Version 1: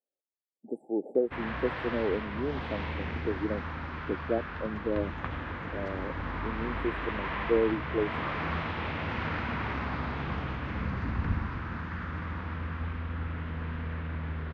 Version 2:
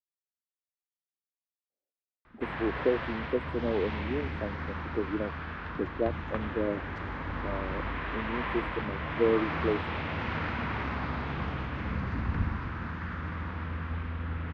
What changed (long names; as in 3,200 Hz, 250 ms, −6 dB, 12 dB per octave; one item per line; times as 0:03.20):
speech: entry +1.70 s
background: entry +1.10 s